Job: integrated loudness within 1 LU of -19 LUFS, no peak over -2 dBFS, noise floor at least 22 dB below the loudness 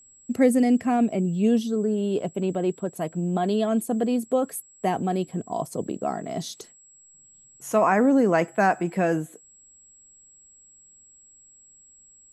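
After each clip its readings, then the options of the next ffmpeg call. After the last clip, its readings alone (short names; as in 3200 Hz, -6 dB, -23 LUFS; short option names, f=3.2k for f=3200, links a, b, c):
steady tone 7700 Hz; tone level -51 dBFS; loudness -24.0 LUFS; peak -8.0 dBFS; loudness target -19.0 LUFS
-> -af "bandreject=f=7.7k:w=30"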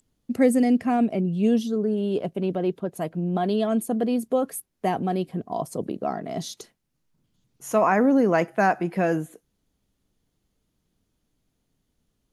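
steady tone none; loudness -24.0 LUFS; peak -8.0 dBFS; loudness target -19.0 LUFS
-> -af "volume=5dB"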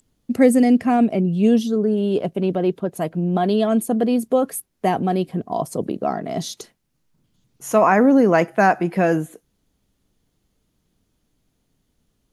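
loudness -19.0 LUFS; peak -3.0 dBFS; noise floor -70 dBFS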